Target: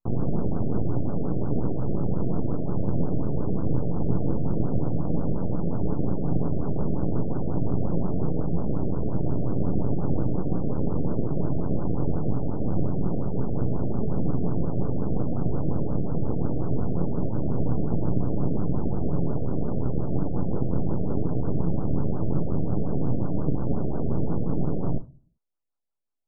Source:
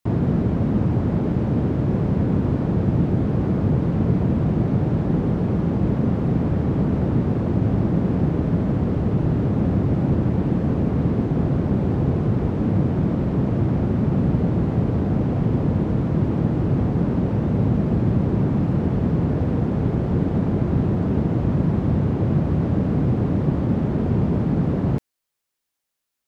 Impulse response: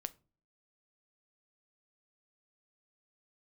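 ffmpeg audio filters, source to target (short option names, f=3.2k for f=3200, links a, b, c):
-filter_complex "[0:a]aeval=exprs='max(val(0),0)':c=same[a];[1:a]atrim=start_sample=2205[b];[a][b]afir=irnorm=-1:irlink=0,afftfilt=real='re*lt(b*sr/1024,700*pow(1600/700,0.5+0.5*sin(2*PI*5.6*pts/sr)))':imag='im*lt(b*sr/1024,700*pow(1600/700,0.5+0.5*sin(2*PI*5.6*pts/sr)))':win_size=1024:overlap=0.75"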